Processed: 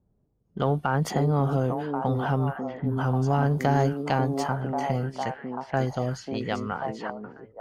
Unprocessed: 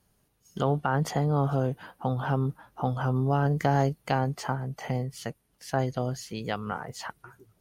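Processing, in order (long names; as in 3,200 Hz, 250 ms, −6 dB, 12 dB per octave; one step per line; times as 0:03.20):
time-frequency box erased 0:02.53–0:02.98, 330–10,000 Hz
echo through a band-pass that steps 541 ms, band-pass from 310 Hz, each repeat 1.4 octaves, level −1 dB
in parallel at −12 dB: soft clipping −22 dBFS, distortion −12 dB
on the sum: low-pass that shuts in the quiet parts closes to 480 Hz, open at −23 dBFS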